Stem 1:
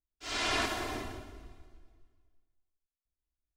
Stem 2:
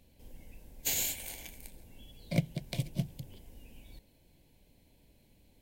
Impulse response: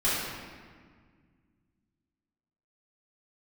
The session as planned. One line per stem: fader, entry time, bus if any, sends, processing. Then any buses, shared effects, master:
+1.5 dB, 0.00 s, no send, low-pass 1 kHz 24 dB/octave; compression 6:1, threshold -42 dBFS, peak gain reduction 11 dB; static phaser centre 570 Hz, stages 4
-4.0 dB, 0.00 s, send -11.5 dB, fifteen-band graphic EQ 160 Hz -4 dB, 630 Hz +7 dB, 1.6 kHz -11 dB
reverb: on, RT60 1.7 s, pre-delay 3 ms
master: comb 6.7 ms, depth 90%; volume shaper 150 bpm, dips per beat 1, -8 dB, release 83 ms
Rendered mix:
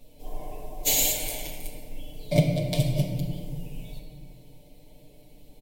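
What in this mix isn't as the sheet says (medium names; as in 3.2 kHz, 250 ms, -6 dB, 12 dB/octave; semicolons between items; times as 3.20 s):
stem 2 -4.0 dB -> +4.0 dB; master: missing volume shaper 150 bpm, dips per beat 1, -8 dB, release 83 ms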